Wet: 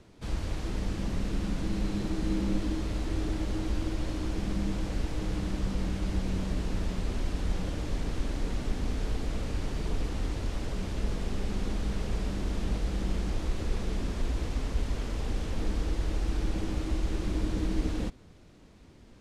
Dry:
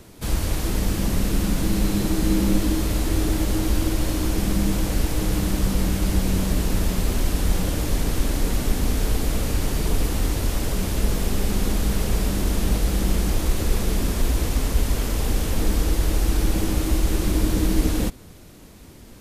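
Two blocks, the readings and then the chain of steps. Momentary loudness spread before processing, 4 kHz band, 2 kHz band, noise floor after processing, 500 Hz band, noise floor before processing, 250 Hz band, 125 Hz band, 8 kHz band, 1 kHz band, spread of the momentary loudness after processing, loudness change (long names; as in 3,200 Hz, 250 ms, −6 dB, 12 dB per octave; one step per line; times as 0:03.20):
3 LU, −11.5 dB, −10.0 dB, −53 dBFS, −9.0 dB, −44 dBFS, −9.0 dB, −9.0 dB, −17.5 dB, −9.5 dB, 3 LU, −9.5 dB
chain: high-frequency loss of the air 88 metres
level −9 dB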